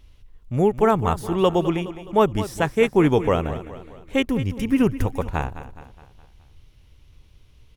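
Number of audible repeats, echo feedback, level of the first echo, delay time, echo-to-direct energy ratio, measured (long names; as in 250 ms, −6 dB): 4, 49%, −13.5 dB, 209 ms, −12.5 dB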